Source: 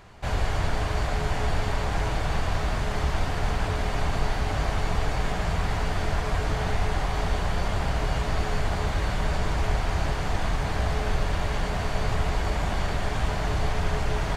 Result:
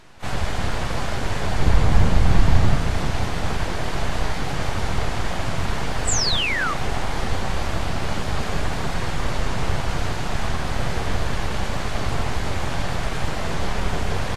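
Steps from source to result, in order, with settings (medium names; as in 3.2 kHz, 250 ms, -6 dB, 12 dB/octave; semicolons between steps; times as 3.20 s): 1.60–2.76 s: bass shelf 200 Hz +10.5 dB; 6.37–6.80 s: high-pass 120 Hz -> 50 Hz 12 dB/octave; full-wave rectifier; frequency-shifting echo 168 ms, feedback 63%, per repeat +30 Hz, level -14 dB; 6.07–6.74 s: painted sound fall 1.1–8.3 kHz -27 dBFS; trim +3.5 dB; Vorbis 32 kbps 48 kHz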